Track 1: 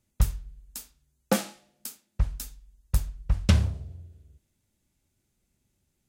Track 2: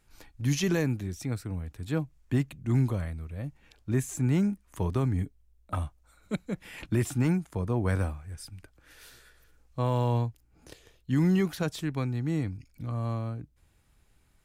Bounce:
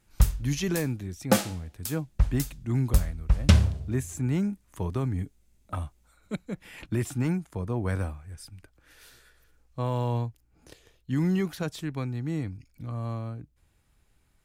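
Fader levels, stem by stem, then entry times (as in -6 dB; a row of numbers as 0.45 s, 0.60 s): +2.5 dB, -1.5 dB; 0.00 s, 0.00 s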